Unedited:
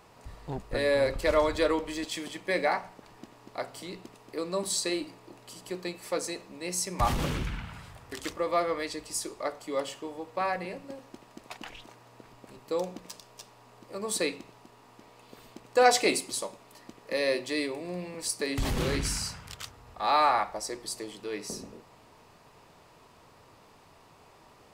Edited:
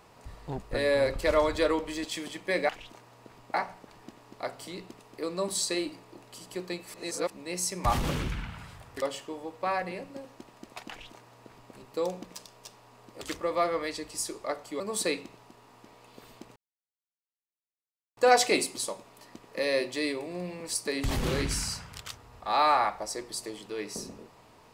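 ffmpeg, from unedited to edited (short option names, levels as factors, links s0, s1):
-filter_complex "[0:a]asplit=9[s0][s1][s2][s3][s4][s5][s6][s7][s8];[s0]atrim=end=2.692[s9];[s1]atrim=start=11.628:end=12.482[s10];[s2]atrim=start=2.688:end=6.092[s11];[s3]atrim=start=6.088:end=6.452,asetpts=PTS-STARTPTS,areverse[s12];[s4]atrim=start=6.448:end=8.172[s13];[s5]atrim=start=9.758:end=13.952[s14];[s6]atrim=start=8.168:end=9.762[s15];[s7]atrim=start=13.948:end=15.71,asetpts=PTS-STARTPTS,afade=t=out:st=1.758:d=0.004:c=hsin,apad=pad_dur=1.61[s16];[s8]atrim=start=15.71,asetpts=PTS-STARTPTS,afade=t=in:d=0.004:c=hsin[s17];[s9][s10]acrossfade=d=0.004:c1=hsin:c2=hsin[s18];[s18][s11]acrossfade=d=0.004:c1=hsin:c2=hsin[s19];[s19][s12]acrossfade=d=0.004:c1=hsin:c2=hsin[s20];[s20][s13]acrossfade=d=0.004:c1=hsin:c2=hsin[s21];[s21][s14]acrossfade=d=0.004:c1=hsin:c2=hsin[s22];[s22][s15]acrossfade=d=0.004:c1=hsin:c2=hsin[s23];[s16][s17]concat=n=2:v=0:a=1[s24];[s23][s24]acrossfade=d=0.004:c1=hsin:c2=hsin"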